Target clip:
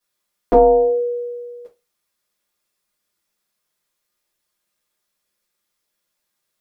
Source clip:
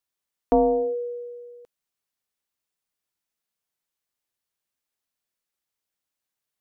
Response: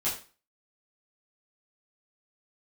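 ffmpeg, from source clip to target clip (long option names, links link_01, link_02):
-filter_complex "[0:a]equalizer=frequency=120:width=0.96:gain=-2.5[link_01];[1:a]atrim=start_sample=2205,asetrate=70560,aresample=44100[link_02];[link_01][link_02]afir=irnorm=-1:irlink=0,volume=7.5dB"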